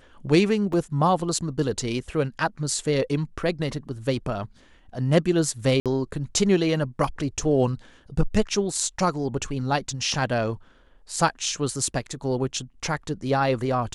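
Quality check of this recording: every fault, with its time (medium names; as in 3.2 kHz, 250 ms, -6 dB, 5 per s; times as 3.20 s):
0.73 s: dropout 3.8 ms
5.80–5.86 s: dropout 57 ms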